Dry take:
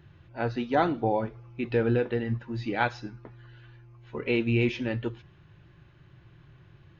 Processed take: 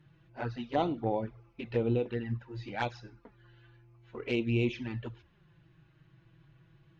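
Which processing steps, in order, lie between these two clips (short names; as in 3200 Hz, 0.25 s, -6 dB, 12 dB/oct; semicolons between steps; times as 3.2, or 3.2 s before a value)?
added harmonics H 3 -18 dB, 5 -36 dB, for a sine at -11.5 dBFS; envelope flanger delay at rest 6.9 ms, full sweep at -24 dBFS; gain -1 dB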